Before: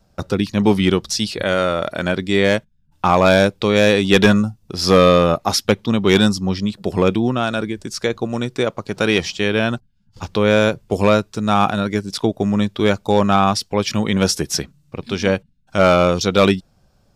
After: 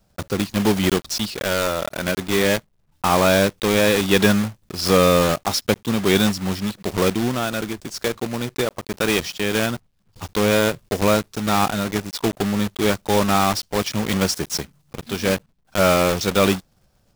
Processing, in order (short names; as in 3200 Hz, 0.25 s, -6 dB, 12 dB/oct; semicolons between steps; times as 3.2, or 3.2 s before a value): block floating point 3-bit; gain -4 dB